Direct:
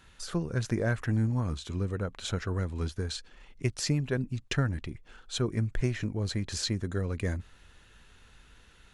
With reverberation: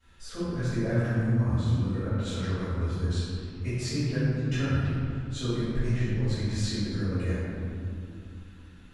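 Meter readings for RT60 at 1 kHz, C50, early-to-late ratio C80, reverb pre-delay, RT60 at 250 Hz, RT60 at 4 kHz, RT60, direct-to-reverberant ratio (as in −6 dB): 2.4 s, −5.0 dB, −2.0 dB, 3 ms, 3.8 s, 1.3 s, 2.5 s, −19.5 dB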